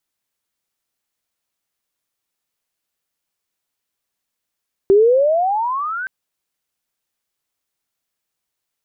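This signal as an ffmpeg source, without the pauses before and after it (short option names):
-f lavfi -i "aevalsrc='pow(10,(-7-15.5*t/1.17)/20)*sin(2*PI*382*1.17/(24.5*log(2)/12)*(exp(24.5*log(2)/12*t/1.17)-1))':d=1.17:s=44100"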